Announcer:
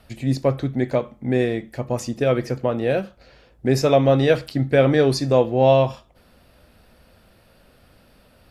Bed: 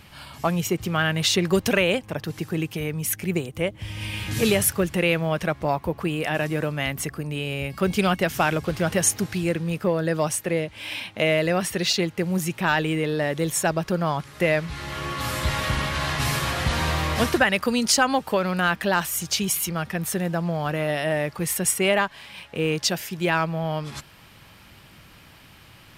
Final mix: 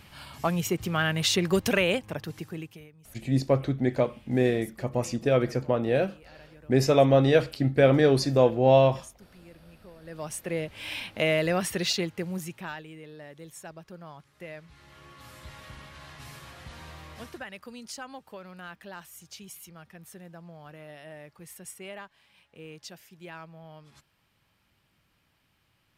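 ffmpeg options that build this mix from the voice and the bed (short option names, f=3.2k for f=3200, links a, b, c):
-filter_complex "[0:a]adelay=3050,volume=-3.5dB[a];[1:a]volume=20.5dB,afade=t=out:st=2.01:d=0.9:silence=0.0630957,afade=t=in:st=10.01:d=0.77:silence=0.0630957,afade=t=out:st=11.74:d=1.09:silence=0.133352[b];[a][b]amix=inputs=2:normalize=0"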